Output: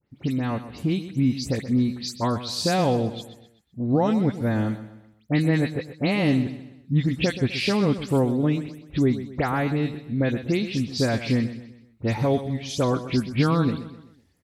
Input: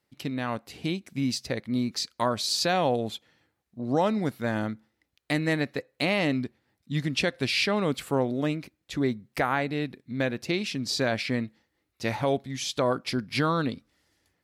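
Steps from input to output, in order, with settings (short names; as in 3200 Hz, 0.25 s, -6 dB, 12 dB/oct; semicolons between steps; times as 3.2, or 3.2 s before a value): spectral delay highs late, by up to 0.109 s; low shelf 360 Hz +11.5 dB; feedback echo 0.127 s, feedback 42%, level -13 dB; gain -1.5 dB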